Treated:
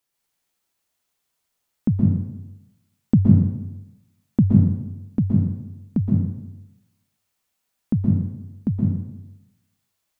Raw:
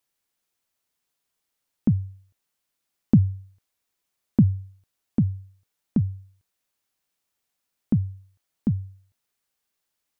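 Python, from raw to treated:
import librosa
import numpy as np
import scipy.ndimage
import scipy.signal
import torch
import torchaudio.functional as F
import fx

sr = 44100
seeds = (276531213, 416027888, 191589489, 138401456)

y = fx.rev_plate(x, sr, seeds[0], rt60_s=0.94, hf_ratio=0.8, predelay_ms=110, drr_db=-2.0)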